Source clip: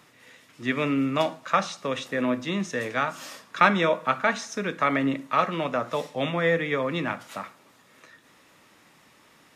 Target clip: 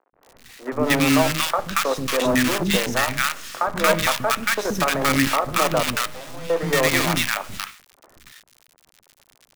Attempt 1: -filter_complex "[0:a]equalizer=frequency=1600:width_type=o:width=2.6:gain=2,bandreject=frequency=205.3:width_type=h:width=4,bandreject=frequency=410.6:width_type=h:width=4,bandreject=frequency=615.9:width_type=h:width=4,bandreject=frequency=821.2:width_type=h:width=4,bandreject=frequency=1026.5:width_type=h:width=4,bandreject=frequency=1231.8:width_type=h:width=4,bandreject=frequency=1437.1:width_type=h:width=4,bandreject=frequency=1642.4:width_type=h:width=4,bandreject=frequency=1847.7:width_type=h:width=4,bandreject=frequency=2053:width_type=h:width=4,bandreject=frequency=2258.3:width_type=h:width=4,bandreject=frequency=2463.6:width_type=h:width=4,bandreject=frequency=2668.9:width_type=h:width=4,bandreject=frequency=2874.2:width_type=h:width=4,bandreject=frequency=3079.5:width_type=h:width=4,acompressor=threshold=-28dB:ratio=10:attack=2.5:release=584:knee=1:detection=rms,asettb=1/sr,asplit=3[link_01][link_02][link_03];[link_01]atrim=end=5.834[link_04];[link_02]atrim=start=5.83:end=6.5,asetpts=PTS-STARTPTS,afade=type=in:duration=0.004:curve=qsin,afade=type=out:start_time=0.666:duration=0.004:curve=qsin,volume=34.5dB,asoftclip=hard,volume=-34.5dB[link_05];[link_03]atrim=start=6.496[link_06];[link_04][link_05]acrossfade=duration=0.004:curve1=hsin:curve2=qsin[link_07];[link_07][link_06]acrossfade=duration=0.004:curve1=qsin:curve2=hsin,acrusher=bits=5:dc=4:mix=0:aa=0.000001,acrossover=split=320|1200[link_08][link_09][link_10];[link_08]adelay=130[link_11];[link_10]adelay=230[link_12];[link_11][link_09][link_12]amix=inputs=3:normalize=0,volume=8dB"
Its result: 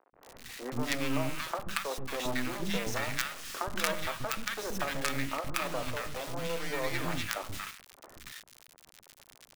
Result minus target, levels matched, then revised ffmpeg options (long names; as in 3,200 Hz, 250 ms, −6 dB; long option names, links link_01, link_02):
downward compressor: peak gain reduction +10.5 dB
-filter_complex "[0:a]equalizer=frequency=1600:width_type=o:width=2.6:gain=2,bandreject=frequency=205.3:width_type=h:width=4,bandreject=frequency=410.6:width_type=h:width=4,bandreject=frequency=615.9:width_type=h:width=4,bandreject=frequency=821.2:width_type=h:width=4,bandreject=frequency=1026.5:width_type=h:width=4,bandreject=frequency=1231.8:width_type=h:width=4,bandreject=frequency=1437.1:width_type=h:width=4,bandreject=frequency=1642.4:width_type=h:width=4,bandreject=frequency=1847.7:width_type=h:width=4,bandreject=frequency=2053:width_type=h:width=4,bandreject=frequency=2258.3:width_type=h:width=4,bandreject=frequency=2463.6:width_type=h:width=4,bandreject=frequency=2668.9:width_type=h:width=4,bandreject=frequency=2874.2:width_type=h:width=4,bandreject=frequency=3079.5:width_type=h:width=4,acompressor=threshold=-16.5dB:ratio=10:attack=2.5:release=584:knee=1:detection=rms,asettb=1/sr,asplit=3[link_01][link_02][link_03];[link_01]atrim=end=5.834[link_04];[link_02]atrim=start=5.83:end=6.5,asetpts=PTS-STARTPTS,afade=type=in:duration=0.004:curve=qsin,afade=type=out:start_time=0.666:duration=0.004:curve=qsin,volume=34.5dB,asoftclip=hard,volume=-34.5dB[link_05];[link_03]atrim=start=6.496[link_06];[link_04][link_05]acrossfade=duration=0.004:curve1=hsin:curve2=qsin[link_07];[link_07][link_06]acrossfade=duration=0.004:curve1=qsin:curve2=hsin,acrusher=bits=5:dc=4:mix=0:aa=0.000001,acrossover=split=320|1200[link_08][link_09][link_10];[link_08]adelay=130[link_11];[link_10]adelay=230[link_12];[link_11][link_09][link_12]amix=inputs=3:normalize=0,volume=8dB"